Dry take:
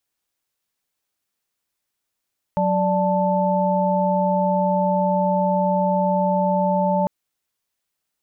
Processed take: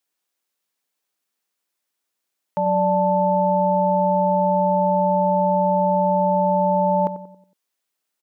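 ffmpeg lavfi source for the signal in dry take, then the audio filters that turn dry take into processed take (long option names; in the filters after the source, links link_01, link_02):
-f lavfi -i "aevalsrc='0.0891*(sin(2*PI*185*t)+sin(2*PI*587.33*t)+sin(2*PI*880*t))':duration=4.5:sample_rate=44100"
-filter_complex "[0:a]highpass=210,asplit=2[link_01][link_02];[link_02]adelay=92,lowpass=frequency=900:poles=1,volume=-10.5dB,asplit=2[link_03][link_04];[link_04]adelay=92,lowpass=frequency=900:poles=1,volume=0.49,asplit=2[link_05][link_06];[link_06]adelay=92,lowpass=frequency=900:poles=1,volume=0.49,asplit=2[link_07][link_08];[link_08]adelay=92,lowpass=frequency=900:poles=1,volume=0.49,asplit=2[link_09][link_10];[link_10]adelay=92,lowpass=frequency=900:poles=1,volume=0.49[link_11];[link_03][link_05][link_07][link_09][link_11]amix=inputs=5:normalize=0[link_12];[link_01][link_12]amix=inputs=2:normalize=0"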